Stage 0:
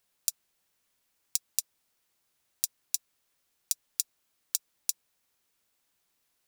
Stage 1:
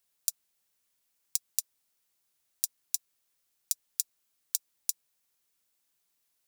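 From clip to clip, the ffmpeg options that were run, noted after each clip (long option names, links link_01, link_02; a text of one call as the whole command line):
ffmpeg -i in.wav -af "highshelf=frequency=4200:gain=7,volume=-6.5dB" out.wav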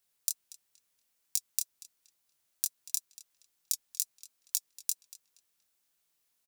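ffmpeg -i in.wav -filter_complex "[0:a]flanger=delay=20:depth=7.7:speed=2.2,asplit=2[link_01][link_02];[link_02]adelay=236,lowpass=frequency=3200:poles=1,volume=-11dB,asplit=2[link_03][link_04];[link_04]adelay=236,lowpass=frequency=3200:poles=1,volume=0.41,asplit=2[link_05][link_06];[link_06]adelay=236,lowpass=frequency=3200:poles=1,volume=0.41,asplit=2[link_07][link_08];[link_08]adelay=236,lowpass=frequency=3200:poles=1,volume=0.41[link_09];[link_01][link_03][link_05][link_07][link_09]amix=inputs=5:normalize=0,volume=3dB" out.wav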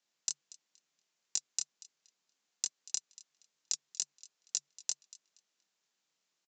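ffmpeg -i in.wav -filter_complex "[0:a]asplit=2[link_01][link_02];[link_02]aeval=exprs='val(0)*gte(abs(val(0)),0.0531)':channel_layout=same,volume=-8.5dB[link_03];[link_01][link_03]amix=inputs=2:normalize=0,afreqshift=140,aresample=16000,aresample=44100" out.wav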